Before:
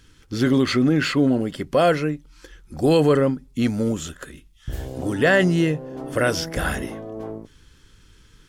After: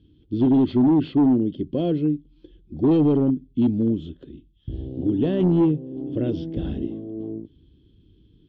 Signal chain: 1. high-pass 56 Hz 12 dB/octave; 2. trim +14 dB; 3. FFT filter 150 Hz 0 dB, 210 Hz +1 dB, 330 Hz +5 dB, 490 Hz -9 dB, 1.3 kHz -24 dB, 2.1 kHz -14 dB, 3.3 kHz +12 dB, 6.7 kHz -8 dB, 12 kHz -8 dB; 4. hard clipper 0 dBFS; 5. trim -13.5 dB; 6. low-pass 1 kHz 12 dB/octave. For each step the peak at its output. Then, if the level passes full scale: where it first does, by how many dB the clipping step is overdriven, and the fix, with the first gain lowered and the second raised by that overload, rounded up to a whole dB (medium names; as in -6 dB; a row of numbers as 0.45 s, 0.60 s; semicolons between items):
-6.5 dBFS, +7.5 dBFS, +8.0 dBFS, 0.0 dBFS, -13.5 dBFS, -13.0 dBFS; step 2, 8.0 dB; step 2 +6 dB, step 5 -5.5 dB